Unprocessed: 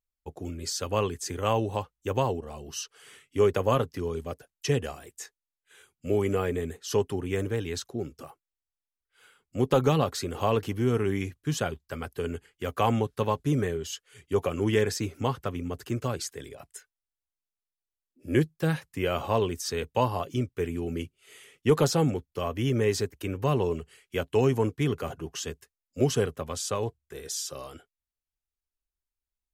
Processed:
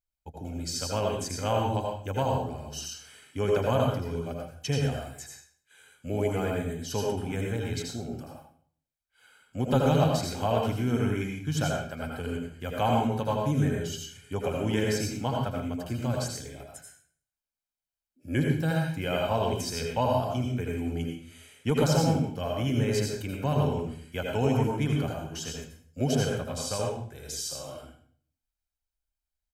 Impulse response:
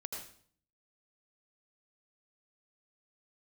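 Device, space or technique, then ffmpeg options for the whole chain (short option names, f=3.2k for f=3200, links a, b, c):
microphone above a desk: -filter_complex "[0:a]equalizer=f=280:t=o:w=0.55:g=4,aecho=1:1:1.3:0.56[a];[1:a]atrim=start_sample=2205[b];[a][b]afir=irnorm=-1:irlink=0"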